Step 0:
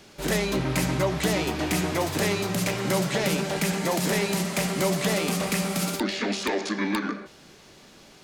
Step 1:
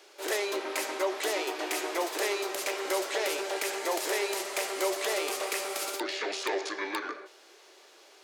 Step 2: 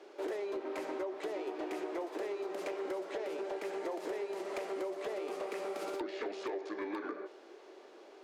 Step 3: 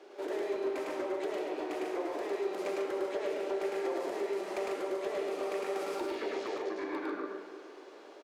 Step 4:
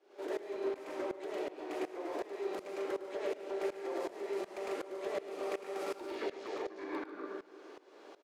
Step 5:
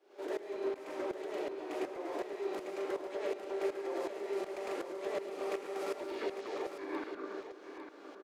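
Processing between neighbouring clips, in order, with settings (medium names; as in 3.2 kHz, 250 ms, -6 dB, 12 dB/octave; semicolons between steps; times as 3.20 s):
elliptic high-pass 360 Hz, stop band 60 dB; trim -3 dB
tilt EQ -5 dB/octave; compression 12:1, threshold -35 dBFS, peak gain reduction 15 dB; hard clipper -30.5 dBFS, distortion -27 dB
on a send: loudspeakers at several distances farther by 36 m -2 dB, 50 m -6 dB; on the sum: plate-style reverb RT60 2.5 s, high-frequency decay 0.75×, DRR 6.5 dB
tremolo saw up 2.7 Hz, depth 90%
delay 851 ms -9 dB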